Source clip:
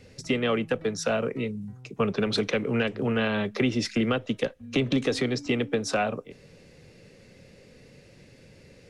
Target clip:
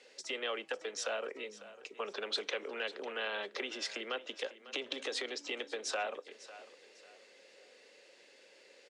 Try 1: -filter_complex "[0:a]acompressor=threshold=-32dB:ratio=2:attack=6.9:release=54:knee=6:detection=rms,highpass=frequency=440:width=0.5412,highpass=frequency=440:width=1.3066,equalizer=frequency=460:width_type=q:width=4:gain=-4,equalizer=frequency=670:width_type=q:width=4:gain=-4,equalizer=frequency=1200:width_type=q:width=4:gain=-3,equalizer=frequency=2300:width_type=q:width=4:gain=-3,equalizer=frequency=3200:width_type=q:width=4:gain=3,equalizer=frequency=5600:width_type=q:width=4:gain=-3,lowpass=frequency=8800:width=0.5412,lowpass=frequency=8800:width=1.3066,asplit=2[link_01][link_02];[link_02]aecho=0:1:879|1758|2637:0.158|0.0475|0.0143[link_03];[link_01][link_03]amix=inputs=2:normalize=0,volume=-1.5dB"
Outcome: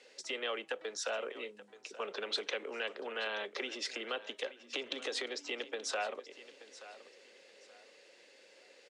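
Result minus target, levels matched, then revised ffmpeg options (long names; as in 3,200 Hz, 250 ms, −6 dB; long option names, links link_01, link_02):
echo 330 ms late
-filter_complex "[0:a]acompressor=threshold=-32dB:ratio=2:attack=6.9:release=54:knee=6:detection=rms,highpass=frequency=440:width=0.5412,highpass=frequency=440:width=1.3066,equalizer=frequency=460:width_type=q:width=4:gain=-4,equalizer=frequency=670:width_type=q:width=4:gain=-4,equalizer=frequency=1200:width_type=q:width=4:gain=-3,equalizer=frequency=2300:width_type=q:width=4:gain=-3,equalizer=frequency=3200:width_type=q:width=4:gain=3,equalizer=frequency=5600:width_type=q:width=4:gain=-3,lowpass=frequency=8800:width=0.5412,lowpass=frequency=8800:width=1.3066,asplit=2[link_01][link_02];[link_02]aecho=0:1:549|1098|1647:0.158|0.0475|0.0143[link_03];[link_01][link_03]amix=inputs=2:normalize=0,volume=-1.5dB"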